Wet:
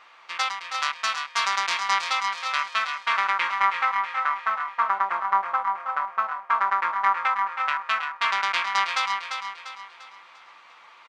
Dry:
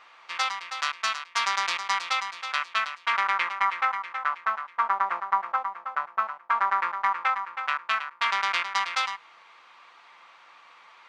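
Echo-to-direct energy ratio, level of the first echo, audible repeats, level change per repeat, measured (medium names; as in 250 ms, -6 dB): -5.5 dB, -6.5 dB, 4, -7.5 dB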